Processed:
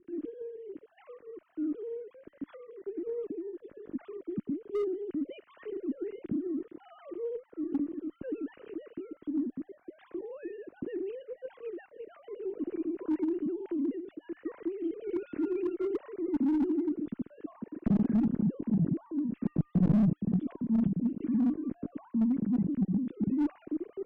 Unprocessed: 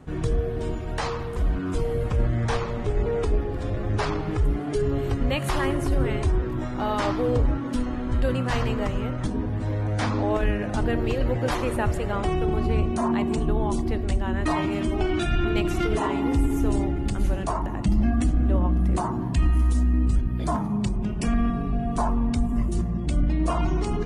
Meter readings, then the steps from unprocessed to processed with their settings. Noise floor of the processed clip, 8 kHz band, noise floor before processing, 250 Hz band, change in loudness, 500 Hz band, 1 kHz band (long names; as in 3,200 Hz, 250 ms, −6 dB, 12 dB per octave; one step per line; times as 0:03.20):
−67 dBFS, below −35 dB, −29 dBFS, −3.5 dB, −7.5 dB, −9.0 dB, −23.0 dB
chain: three sine waves on the formant tracks
drawn EQ curve 300 Hz 0 dB, 810 Hz −29 dB, 1,400 Hz −22 dB
harmonic generator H 4 −17 dB, 6 −22 dB, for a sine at −9 dBFS
slew-rate limiting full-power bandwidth 33 Hz
level −5.5 dB